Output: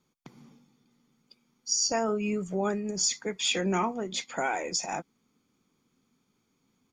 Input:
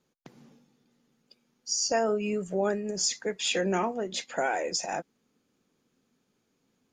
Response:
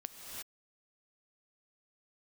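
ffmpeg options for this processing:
-af "aecho=1:1:0.9:0.43"

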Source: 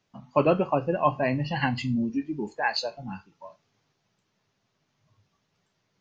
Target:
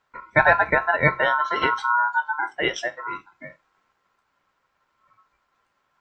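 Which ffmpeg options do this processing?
ffmpeg -i in.wav -af "equalizer=frequency=5100:width=0.39:gain=-10.5,aeval=exprs='val(0)*sin(2*PI*1200*n/s)':channel_layout=same,volume=8.5dB" out.wav

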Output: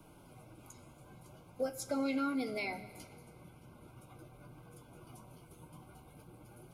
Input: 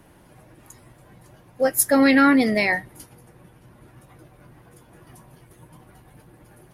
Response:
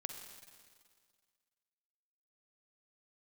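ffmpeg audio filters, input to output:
-filter_complex "[0:a]acrossover=split=160|7000[link_01][link_02][link_03];[link_01]acompressor=threshold=-49dB:ratio=4[link_04];[link_02]acompressor=threshold=-29dB:ratio=4[link_05];[link_03]acompressor=threshold=-55dB:ratio=4[link_06];[link_04][link_05][link_06]amix=inputs=3:normalize=0,asuperstop=centerf=1800:order=20:qfactor=4,asplit=2[link_07][link_08];[1:a]atrim=start_sample=2205[link_09];[link_08][link_09]afir=irnorm=-1:irlink=0,volume=-2dB[link_10];[link_07][link_10]amix=inputs=2:normalize=0,flanger=delay=6.4:depth=7.1:regen=-53:speed=0.43:shape=sinusoidal,volume=-5.5dB"

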